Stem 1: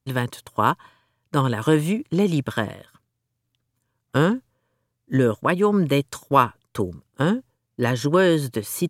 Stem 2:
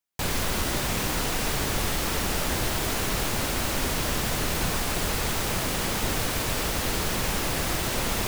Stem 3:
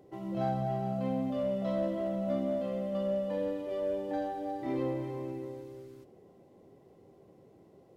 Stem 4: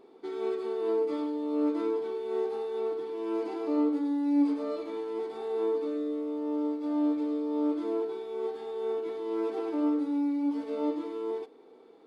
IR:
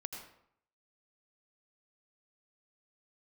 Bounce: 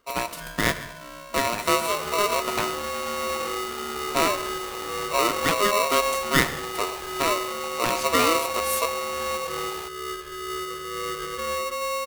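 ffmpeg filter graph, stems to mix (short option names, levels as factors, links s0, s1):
-filter_complex "[0:a]highshelf=f=6700:g=8.5,volume=0.447,asplit=2[s0][s1];[s1]volume=0.562[s2];[1:a]adelay=1600,volume=0.188[s3];[2:a]equalizer=f=1600:w=0.78:g=9.5,volume=0.299[s4];[3:a]asoftclip=type=tanh:threshold=0.0447,adelay=1650,volume=0.944,asplit=2[s5][s6];[s6]volume=0.422[s7];[4:a]atrim=start_sample=2205[s8];[s2][s7]amix=inputs=2:normalize=0[s9];[s9][s8]afir=irnorm=-1:irlink=0[s10];[s0][s3][s4][s5][s10]amix=inputs=5:normalize=0,aeval=exprs='val(0)*sgn(sin(2*PI*820*n/s))':c=same"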